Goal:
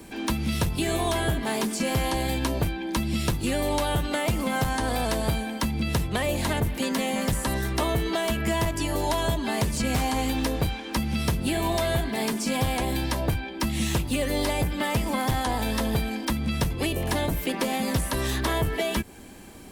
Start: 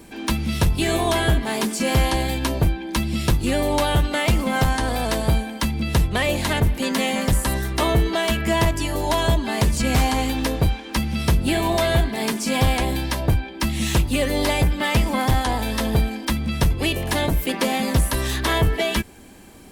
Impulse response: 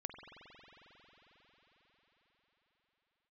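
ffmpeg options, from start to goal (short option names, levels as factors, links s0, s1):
-filter_complex "[0:a]acrossover=split=100|1200|7100[s0][s1][s2][s3];[s0]acompressor=threshold=0.0282:ratio=4[s4];[s1]acompressor=threshold=0.0562:ratio=4[s5];[s2]acompressor=threshold=0.0224:ratio=4[s6];[s3]acompressor=threshold=0.0141:ratio=4[s7];[s4][s5][s6][s7]amix=inputs=4:normalize=0"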